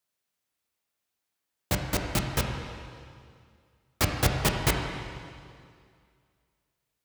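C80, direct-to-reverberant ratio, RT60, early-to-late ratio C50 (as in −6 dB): 4.5 dB, 1.5 dB, 2.2 s, 3.5 dB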